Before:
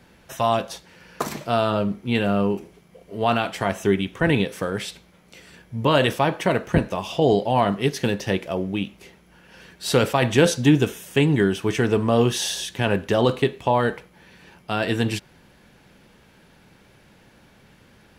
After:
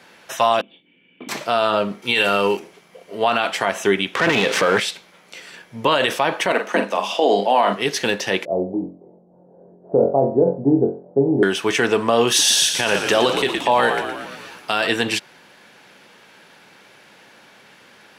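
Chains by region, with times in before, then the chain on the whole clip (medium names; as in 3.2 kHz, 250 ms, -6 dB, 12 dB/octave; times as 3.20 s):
0.61–1.29 s: cascade formant filter i + doubling 24 ms -5 dB
2.02–2.57 s: treble shelf 2.2 kHz +11.5 dB + comb 2.2 ms, depth 30%
4.15–4.80 s: low-pass 5.2 kHz + waveshaping leveller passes 3 + upward compressor, threshold -18 dBFS
6.52–7.73 s: rippled Chebyshev high-pass 190 Hz, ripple 3 dB + doubling 45 ms -7.5 dB
8.45–11.43 s: steep low-pass 690 Hz + flutter echo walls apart 3.8 m, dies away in 0.38 s
12.27–14.87 s: treble shelf 4.3 kHz +8 dB + frequency-shifting echo 116 ms, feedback 62%, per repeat -71 Hz, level -9 dB
whole clip: frequency weighting A; loudness maximiser +13 dB; trim -5 dB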